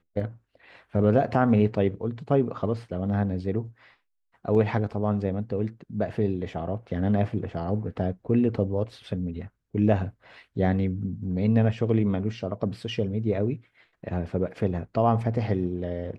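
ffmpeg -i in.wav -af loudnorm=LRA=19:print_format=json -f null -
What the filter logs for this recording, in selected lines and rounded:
"input_i" : "-26.9",
"input_tp" : "-7.8",
"input_lra" : "2.7",
"input_thresh" : "-37.3",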